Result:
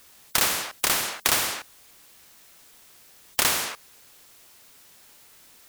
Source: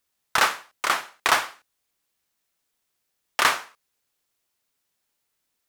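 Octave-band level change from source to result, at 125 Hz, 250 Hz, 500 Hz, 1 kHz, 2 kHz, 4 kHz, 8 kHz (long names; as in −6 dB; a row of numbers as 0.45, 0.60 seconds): +7.0, +3.5, −1.5, −7.0, −4.5, +1.5, +7.0 decibels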